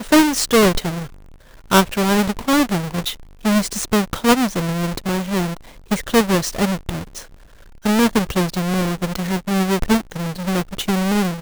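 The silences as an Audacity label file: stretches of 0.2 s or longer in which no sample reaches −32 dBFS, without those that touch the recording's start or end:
1.060000	1.710000	silence
3.150000	3.450000	silence
5.570000	5.910000	silence
7.220000	7.850000	silence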